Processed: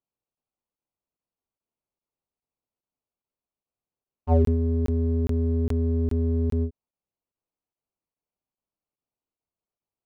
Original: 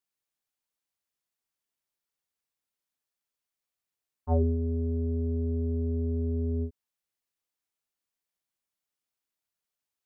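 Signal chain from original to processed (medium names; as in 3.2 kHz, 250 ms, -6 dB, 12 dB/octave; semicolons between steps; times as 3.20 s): local Wiener filter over 25 samples; crackling interface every 0.41 s, samples 1024, zero, from 0.35 s; trim +5.5 dB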